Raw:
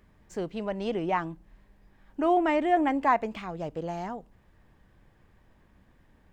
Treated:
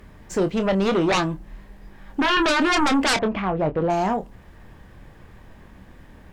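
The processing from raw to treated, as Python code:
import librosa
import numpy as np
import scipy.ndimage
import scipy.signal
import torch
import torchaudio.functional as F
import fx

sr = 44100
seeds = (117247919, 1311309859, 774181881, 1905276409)

y = fx.lowpass(x, sr, hz=2000.0, slope=12, at=(3.17, 3.9))
y = fx.fold_sine(y, sr, drive_db=15, ceiling_db=-11.5)
y = fx.doubler(y, sr, ms=26.0, db=-9.5)
y = F.gain(torch.from_numpy(y), -5.0).numpy()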